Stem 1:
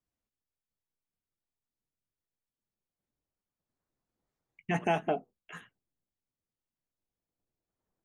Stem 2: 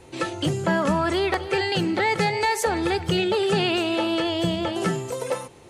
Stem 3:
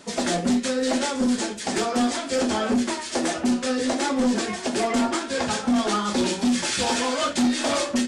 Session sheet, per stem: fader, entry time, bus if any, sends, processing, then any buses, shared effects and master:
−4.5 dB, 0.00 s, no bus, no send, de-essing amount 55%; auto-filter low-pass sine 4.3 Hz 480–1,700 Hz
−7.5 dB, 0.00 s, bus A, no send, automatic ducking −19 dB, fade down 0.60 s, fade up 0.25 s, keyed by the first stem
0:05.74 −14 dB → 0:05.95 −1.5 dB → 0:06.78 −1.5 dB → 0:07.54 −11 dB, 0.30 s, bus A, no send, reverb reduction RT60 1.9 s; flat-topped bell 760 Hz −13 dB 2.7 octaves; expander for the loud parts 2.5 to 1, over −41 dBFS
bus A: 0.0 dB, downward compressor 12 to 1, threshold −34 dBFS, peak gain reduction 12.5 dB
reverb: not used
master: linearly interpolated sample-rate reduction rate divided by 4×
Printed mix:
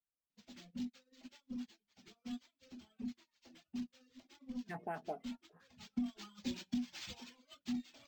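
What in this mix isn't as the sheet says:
stem 1 −4.5 dB → −16.5 dB
stem 2: muted

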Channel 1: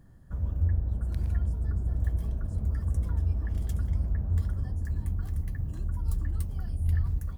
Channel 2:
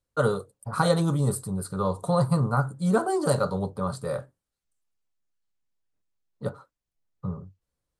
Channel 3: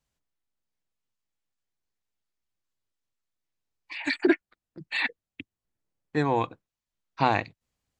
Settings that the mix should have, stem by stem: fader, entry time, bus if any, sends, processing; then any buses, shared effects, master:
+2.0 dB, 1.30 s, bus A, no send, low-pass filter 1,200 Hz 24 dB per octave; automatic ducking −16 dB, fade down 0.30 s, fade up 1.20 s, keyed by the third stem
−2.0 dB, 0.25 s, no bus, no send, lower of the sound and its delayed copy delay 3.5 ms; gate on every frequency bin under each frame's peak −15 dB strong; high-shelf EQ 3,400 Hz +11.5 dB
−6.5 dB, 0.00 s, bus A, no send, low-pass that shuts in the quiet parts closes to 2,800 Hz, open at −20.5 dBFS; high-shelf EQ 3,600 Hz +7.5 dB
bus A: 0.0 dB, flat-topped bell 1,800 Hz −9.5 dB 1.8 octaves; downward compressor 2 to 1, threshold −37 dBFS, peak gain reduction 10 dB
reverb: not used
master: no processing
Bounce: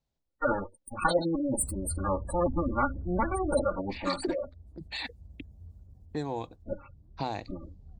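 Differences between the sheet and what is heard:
stem 1 +2.0 dB → −6.0 dB
stem 3 −6.5 dB → +0.5 dB

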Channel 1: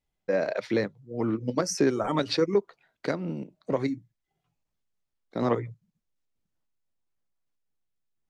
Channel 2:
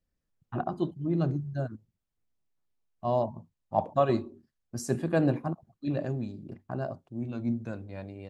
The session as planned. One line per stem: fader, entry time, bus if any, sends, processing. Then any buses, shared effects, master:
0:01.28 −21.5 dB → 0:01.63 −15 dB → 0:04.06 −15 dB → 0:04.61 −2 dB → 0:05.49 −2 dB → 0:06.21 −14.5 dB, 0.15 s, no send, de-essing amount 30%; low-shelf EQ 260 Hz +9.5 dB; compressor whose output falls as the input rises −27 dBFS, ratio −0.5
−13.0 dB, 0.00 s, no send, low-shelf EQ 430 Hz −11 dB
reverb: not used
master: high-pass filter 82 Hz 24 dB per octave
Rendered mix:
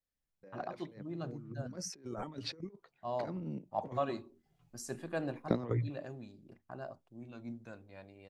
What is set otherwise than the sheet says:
stem 2 −13.0 dB → −6.0 dB
master: missing high-pass filter 82 Hz 24 dB per octave

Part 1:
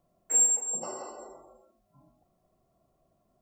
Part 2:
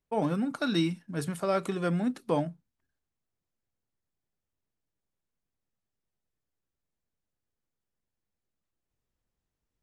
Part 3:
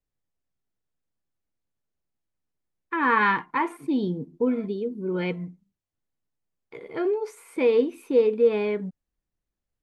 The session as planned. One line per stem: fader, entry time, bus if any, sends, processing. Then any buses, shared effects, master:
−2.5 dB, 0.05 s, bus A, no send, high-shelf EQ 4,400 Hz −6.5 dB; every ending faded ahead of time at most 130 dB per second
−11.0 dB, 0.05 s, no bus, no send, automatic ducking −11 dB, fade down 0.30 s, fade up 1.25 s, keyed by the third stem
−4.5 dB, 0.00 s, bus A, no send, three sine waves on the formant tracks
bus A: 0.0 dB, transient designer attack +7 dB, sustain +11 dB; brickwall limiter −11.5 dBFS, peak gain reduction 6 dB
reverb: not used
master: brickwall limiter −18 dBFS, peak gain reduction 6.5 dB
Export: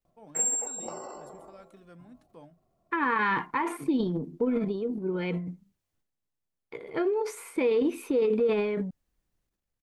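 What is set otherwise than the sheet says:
stem 2 −11.0 dB → −23.0 dB
stem 3: missing three sine waves on the formant tracks

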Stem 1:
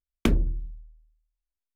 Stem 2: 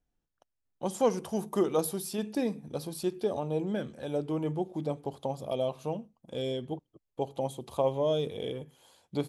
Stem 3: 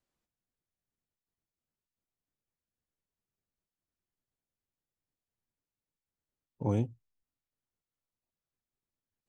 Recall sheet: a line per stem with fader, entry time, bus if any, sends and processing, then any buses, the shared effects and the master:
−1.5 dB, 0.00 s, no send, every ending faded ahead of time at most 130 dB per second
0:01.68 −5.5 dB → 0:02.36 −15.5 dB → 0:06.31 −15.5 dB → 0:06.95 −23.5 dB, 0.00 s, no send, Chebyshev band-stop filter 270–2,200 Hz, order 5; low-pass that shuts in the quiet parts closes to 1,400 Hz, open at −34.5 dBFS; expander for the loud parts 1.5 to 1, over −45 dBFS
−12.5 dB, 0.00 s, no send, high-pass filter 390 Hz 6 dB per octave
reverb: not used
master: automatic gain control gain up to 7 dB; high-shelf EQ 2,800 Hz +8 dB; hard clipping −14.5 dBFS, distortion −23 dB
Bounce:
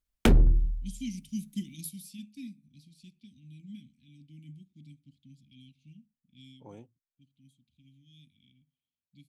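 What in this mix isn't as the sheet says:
stem 1 −1.5 dB → +5.5 dB
stem 3 −12.5 dB → −20.5 dB
master: missing high-shelf EQ 2,800 Hz +8 dB

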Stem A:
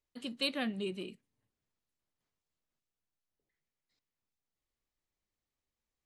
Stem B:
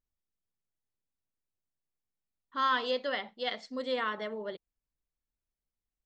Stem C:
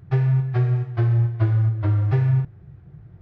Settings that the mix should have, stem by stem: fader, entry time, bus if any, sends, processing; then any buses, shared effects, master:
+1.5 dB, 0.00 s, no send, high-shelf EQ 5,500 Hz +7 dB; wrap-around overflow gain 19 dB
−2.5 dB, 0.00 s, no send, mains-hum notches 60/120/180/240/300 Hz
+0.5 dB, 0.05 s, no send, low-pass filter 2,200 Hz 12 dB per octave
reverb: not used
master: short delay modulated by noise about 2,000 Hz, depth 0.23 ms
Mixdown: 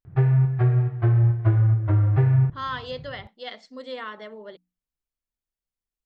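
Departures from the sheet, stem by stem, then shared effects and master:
stem A: muted
master: missing short delay modulated by noise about 2,000 Hz, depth 0.23 ms

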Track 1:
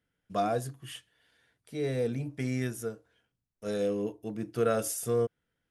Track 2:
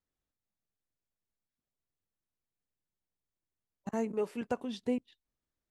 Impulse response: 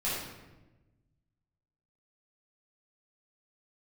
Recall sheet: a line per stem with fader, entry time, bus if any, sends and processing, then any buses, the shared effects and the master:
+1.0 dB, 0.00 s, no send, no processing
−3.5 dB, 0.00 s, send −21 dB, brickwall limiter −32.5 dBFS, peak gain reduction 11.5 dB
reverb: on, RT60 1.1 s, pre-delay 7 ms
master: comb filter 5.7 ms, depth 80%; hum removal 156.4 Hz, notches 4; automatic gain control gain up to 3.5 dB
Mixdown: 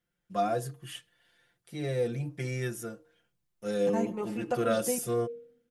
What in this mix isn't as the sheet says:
stem 1 +1.0 dB → −5.0 dB
stem 2: missing brickwall limiter −32.5 dBFS, peak gain reduction 11.5 dB

